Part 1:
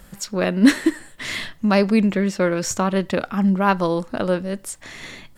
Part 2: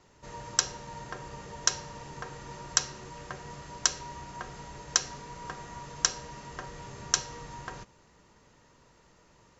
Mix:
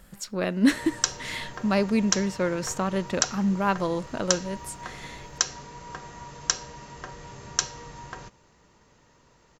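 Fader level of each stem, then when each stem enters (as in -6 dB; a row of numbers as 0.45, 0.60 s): -6.5, +1.0 dB; 0.00, 0.45 s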